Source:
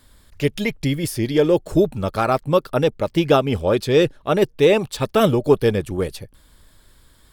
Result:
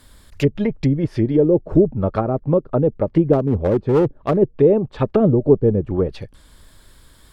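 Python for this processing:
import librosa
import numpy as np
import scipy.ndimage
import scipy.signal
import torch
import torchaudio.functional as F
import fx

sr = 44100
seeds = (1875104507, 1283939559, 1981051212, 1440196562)

y = fx.env_lowpass_down(x, sr, base_hz=440.0, full_db=-16.0)
y = fx.clip_asym(y, sr, top_db=-18.5, bottom_db=-11.5, at=(3.33, 4.37))
y = y * 10.0 ** (4.0 / 20.0)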